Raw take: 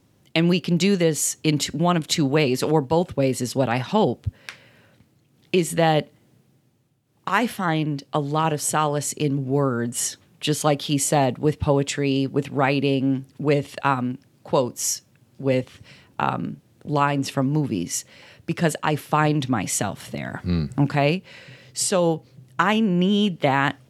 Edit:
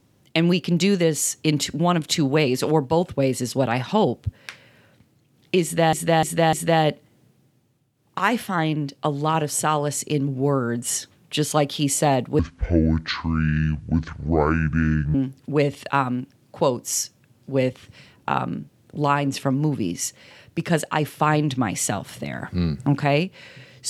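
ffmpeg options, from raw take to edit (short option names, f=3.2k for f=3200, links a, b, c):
-filter_complex "[0:a]asplit=6[a][b][c][d][e][f];[a]atrim=end=5.932[g];[b]atrim=start=5.628:end=5.932[h];[c]atrim=start=5.628:end=5.932[i];[d]atrim=start=5.628:end=11.494[j];[e]atrim=start=11.49:end=13.06,asetpts=PTS-STARTPTS,asetrate=25137,aresample=44100,atrim=end_sample=121468,asetpts=PTS-STARTPTS[k];[f]atrim=start=13.056[l];[g][h]acrossfade=d=0.004:c1=hsin:c2=hsin[m];[m][i]acrossfade=d=0.004:c1=hsin:c2=hsin[n];[n][j]acrossfade=d=0.004:c1=hsin:c2=hsin[o];[o][k]acrossfade=d=0.004:c1=hsin:c2=hsin[p];[p][l]acrossfade=d=0.004:c1=hsin:c2=hsin"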